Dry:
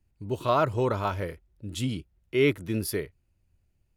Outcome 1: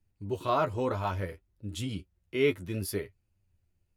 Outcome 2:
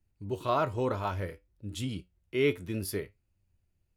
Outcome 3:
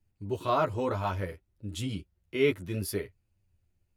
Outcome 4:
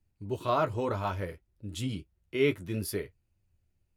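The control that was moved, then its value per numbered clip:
flange, regen: +27%, +70%, -2%, -39%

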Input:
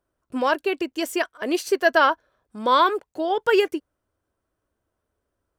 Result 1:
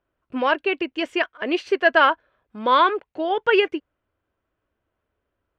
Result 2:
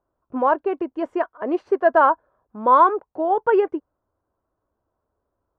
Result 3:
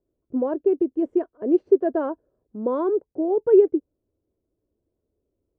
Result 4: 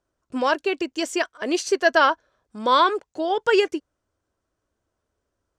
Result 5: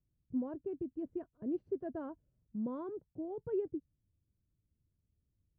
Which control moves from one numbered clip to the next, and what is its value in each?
resonant low-pass, frequency: 2.7 kHz, 1 kHz, 400 Hz, 6.8 kHz, 150 Hz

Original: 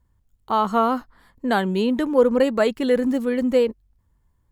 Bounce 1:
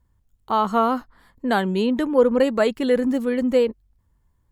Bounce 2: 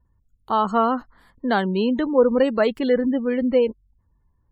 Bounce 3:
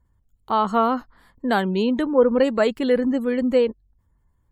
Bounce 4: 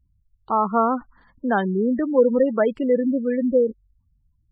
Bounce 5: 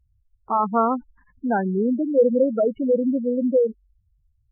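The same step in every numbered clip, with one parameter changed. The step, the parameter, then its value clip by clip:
spectral gate, under each frame's peak: -60 dB, -35 dB, -45 dB, -20 dB, -10 dB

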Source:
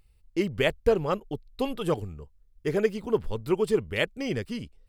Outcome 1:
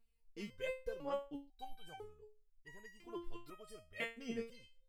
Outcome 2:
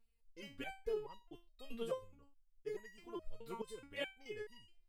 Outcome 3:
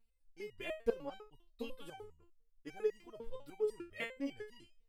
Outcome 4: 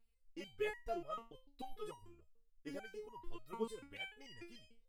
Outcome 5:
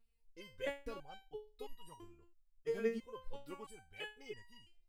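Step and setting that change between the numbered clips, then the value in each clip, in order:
resonator arpeggio, rate: 2 Hz, 4.7 Hz, 10 Hz, 6.8 Hz, 3 Hz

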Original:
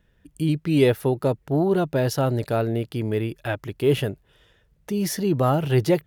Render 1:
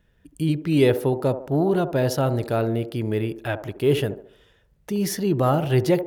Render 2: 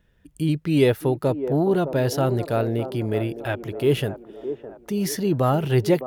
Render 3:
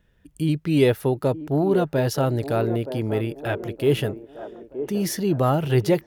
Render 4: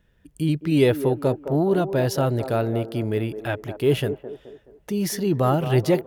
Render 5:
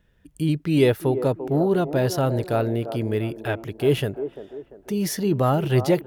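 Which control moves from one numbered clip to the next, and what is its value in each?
feedback echo behind a band-pass, time: 71 ms, 611 ms, 922 ms, 213 ms, 344 ms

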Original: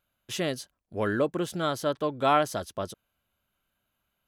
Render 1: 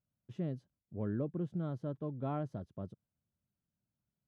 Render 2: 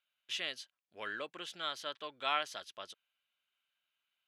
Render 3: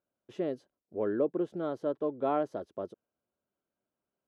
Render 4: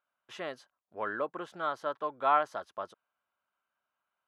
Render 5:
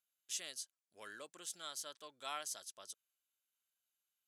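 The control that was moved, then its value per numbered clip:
band-pass filter, frequency: 140 Hz, 2.9 kHz, 390 Hz, 1.1 kHz, 7.7 kHz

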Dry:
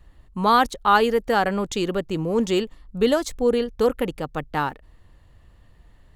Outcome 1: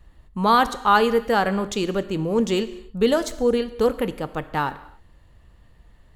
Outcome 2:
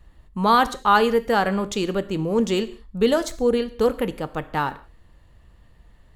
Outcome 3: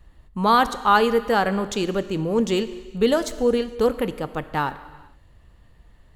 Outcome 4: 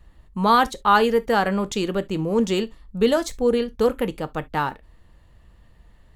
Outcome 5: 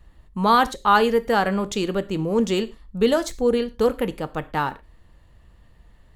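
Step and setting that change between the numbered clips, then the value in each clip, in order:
gated-style reverb, gate: 320 ms, 210 ms, 490 ms, 90 ms, 140 ms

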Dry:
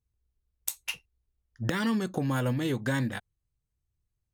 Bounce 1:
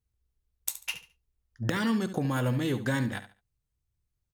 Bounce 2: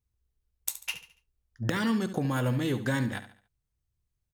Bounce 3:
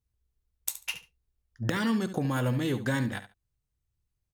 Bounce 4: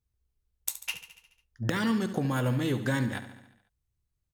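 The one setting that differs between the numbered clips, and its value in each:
feedback delay, feedback: 25%, 38%, 17%, 62%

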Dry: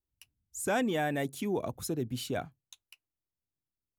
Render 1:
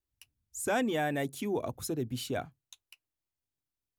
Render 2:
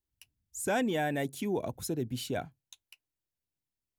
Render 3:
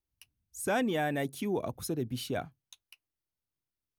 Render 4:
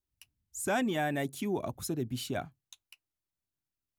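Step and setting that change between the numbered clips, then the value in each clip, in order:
band-stop, frequency: 180 Hz, 1.2 kHz, 7.3 kHz, 480 Hz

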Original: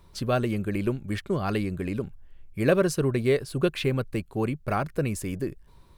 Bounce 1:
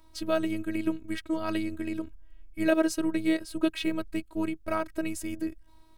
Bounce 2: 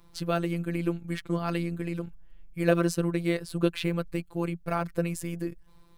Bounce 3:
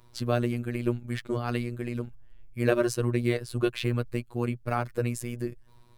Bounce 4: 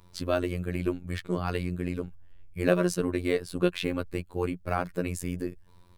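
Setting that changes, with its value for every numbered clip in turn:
robot voice, frequency: 320 Hz, 170 Hz, 120 Hz, 89 Hz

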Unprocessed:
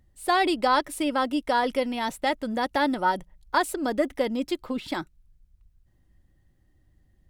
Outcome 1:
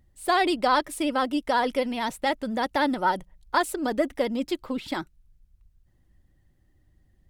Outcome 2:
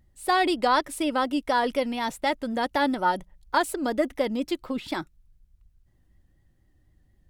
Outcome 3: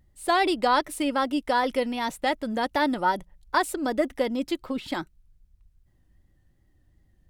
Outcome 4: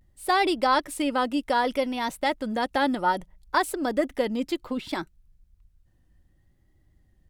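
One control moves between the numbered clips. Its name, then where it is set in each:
vibrato, rate: 16 Hz, 4.1 Hz, 2.6 Hz, 0.63 Hz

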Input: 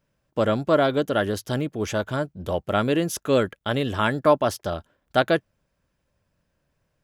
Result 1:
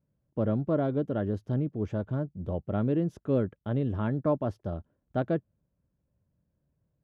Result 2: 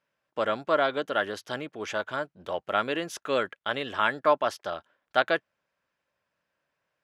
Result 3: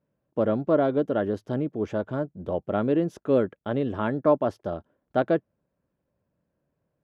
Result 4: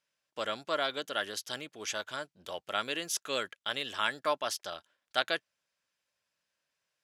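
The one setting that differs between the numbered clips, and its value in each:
band-pass filter, frequency: 120 Hz, 1.7 kHz, 310 Hz, 4.8 kHz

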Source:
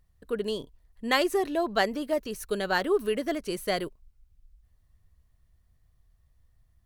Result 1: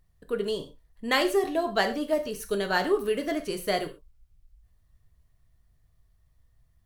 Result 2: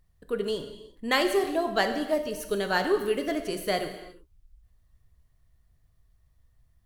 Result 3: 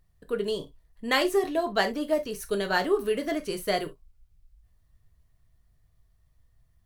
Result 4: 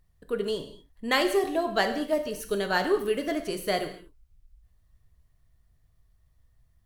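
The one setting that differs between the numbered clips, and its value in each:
gated-style reverb, gate: 150 ms, 390 ms, 90 ms, 260 ms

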